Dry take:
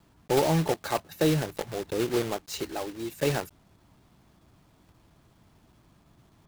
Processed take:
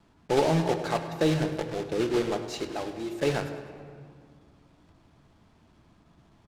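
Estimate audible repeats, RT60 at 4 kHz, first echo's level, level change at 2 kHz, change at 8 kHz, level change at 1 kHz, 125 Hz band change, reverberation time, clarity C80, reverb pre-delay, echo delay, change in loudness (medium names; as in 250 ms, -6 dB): 1, 1.2 s, -16.0 dB, +0.5 dB, -4.5 dB, +0.5 dB, -0.5 dB, 2.0 s, 9.5 dB, 3 ms, 102 ms, +0.5 dB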